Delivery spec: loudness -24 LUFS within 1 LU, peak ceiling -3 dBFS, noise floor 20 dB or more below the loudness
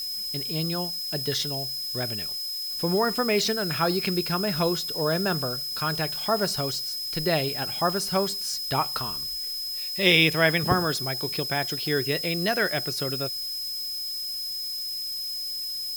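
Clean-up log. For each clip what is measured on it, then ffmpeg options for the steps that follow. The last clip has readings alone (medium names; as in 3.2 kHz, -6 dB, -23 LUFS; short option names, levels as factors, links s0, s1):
steady tone 5.1 kHz; tone level -30 dBFS; noise floor -32 dBFS; noise floor target -46 dBFS; loudness -25.5 LUFS; peak level -4.0 dBFS; loudness target -24.0 LUFS
-> -af "bandreject=f=5100:w=30"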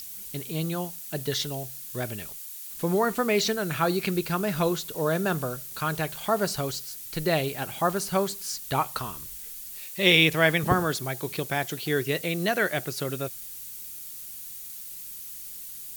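steady tone not found; noise floor -40 dBFS; noise floor target -48 dBFS
-> -af "afftdn=nr=8:nf=-40"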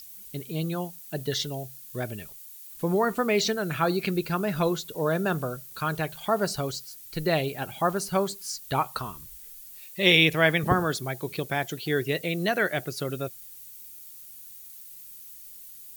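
noise floor -46 dBFS; noise floor target -47 dBFS
-> -af "afftdn=nr=6:nf=-46"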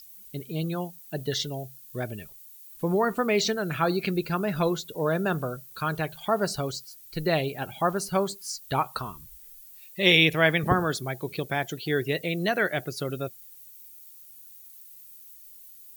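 noise floor -49 dBFS; loudness -27.0 LUFS; peak level -4.0 dBFS; loudness target -24.0 LUFS
-> -af "volume=1.41,alimiter=limit=0.708:level=0:latency=1"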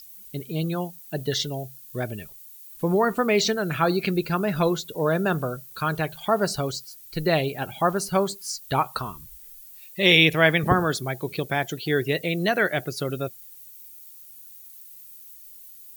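loudness -24.0 LUFS; peak level -3.0 dBFS; noise floor -46 dBFS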